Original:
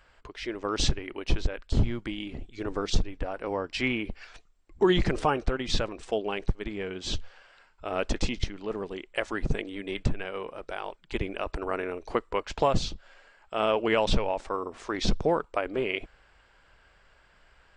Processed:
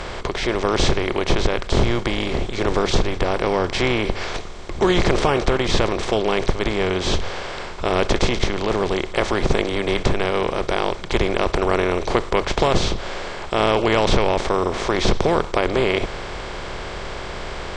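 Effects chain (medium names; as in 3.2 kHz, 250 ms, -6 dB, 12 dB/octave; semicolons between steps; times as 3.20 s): spectral levelling over time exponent 0.4; hum notches 50/100 Hz; trim +1.5 dB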